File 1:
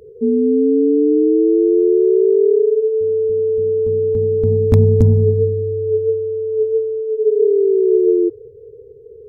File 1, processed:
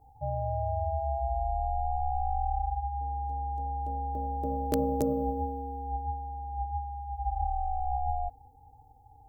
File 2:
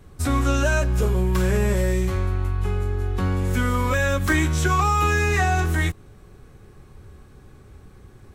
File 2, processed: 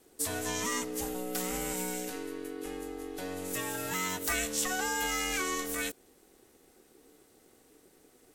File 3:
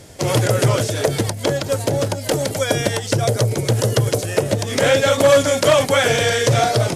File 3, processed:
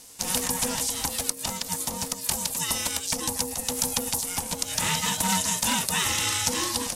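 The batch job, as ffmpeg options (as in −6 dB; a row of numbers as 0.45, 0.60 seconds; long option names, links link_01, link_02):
-af "crystalizer=i=8:c=0,aeval=exprs='val(0)*sin(2*PI*370*n/s)':channel_layout=same,volume=-14.5dB"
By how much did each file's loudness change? −17.5, −11.0, −8.0 LU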